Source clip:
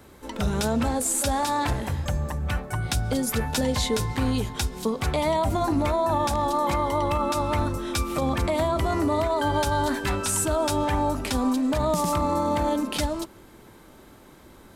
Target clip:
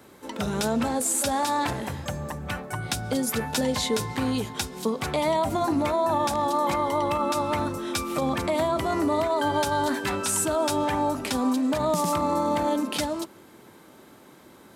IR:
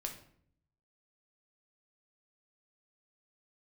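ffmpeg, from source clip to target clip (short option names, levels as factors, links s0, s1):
-af "highpass=140"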